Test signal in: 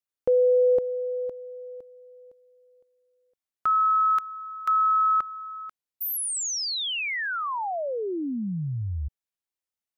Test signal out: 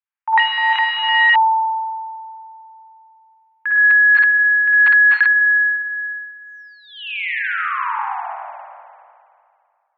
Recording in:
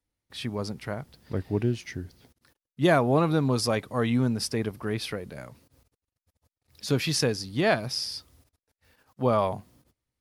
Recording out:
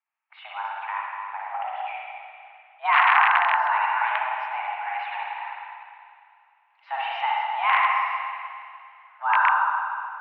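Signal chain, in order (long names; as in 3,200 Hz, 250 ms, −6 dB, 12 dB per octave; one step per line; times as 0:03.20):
spring reverb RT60 2.3 s, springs 50/60 ms, chirp 70 ms, DRR −5 dB
wrap-around overflow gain 8.5 dB
single-sideband voice off tune +390 Hz 450–2,300 Hz
level +1.5 dB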